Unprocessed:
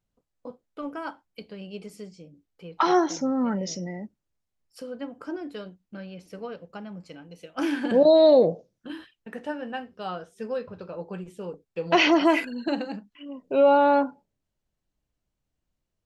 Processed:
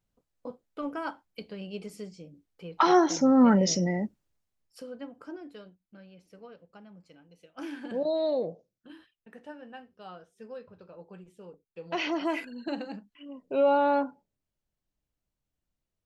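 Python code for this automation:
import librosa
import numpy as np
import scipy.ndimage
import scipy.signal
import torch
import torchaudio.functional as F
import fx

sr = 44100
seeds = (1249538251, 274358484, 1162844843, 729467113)

y = fx.gain(x, sr, db=fx.line((2.98, 0.0), (3.42, 6.5), (4.04, 6.5), (4.85, -4.5), (5.97, -12.0), (11.96, -12.0), (12.93, -5.0)))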